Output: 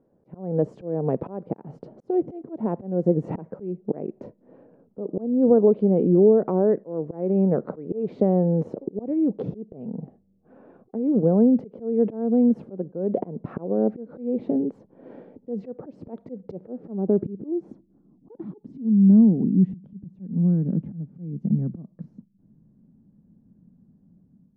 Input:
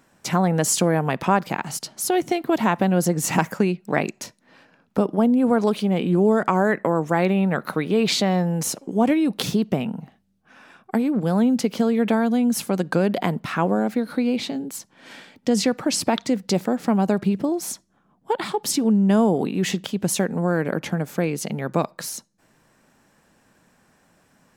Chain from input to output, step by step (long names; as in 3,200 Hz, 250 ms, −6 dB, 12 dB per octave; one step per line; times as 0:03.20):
downward compressor 1.5 to 1, threshold −26 dBFS, peak gain reduction 5 dB
volume swells 299 ms
automatic gain control gain up to 9 dB
low-pass filter sweep 470 Hz → 200 Hz, 0:16.56–0:19.77
level −6 dB